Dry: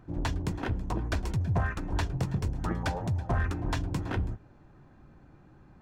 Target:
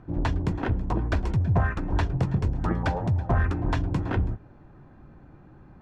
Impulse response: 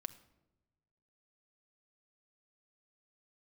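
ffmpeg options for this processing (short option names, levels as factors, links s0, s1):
-af "aemphasis=mode=reproduction:type=75fm,volume=1.68"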